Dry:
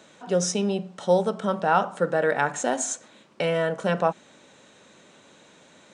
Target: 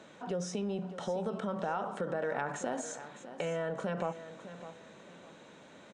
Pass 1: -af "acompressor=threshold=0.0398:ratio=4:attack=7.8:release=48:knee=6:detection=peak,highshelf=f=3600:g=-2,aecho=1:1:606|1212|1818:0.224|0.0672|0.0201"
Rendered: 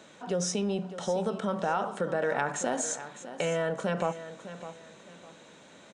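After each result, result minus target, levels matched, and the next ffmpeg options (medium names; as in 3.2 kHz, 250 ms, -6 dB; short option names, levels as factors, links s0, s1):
compression: peak gain reduction -5 dB; 8 kHz band +5.0 dB
-af "acompressor=threshold=0.0178:ratio=4:attack=7.8:release=48:knee=6:detection=peak,highshelf=f=3600:g=-2,aecho=1:1:606|1212|1818:0.224|0.0672|0.0201"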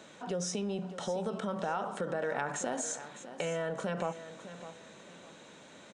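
8 kHz band +6.0 dB
-af "acompressor=threshold=0.0178:ratio=4:attack=7.8:release=48:knee=6:detection=peak,highshelf=f=3600:g=-10.5,aecho=1:1:606|1212|1818:0.224|0.0672|0.0201"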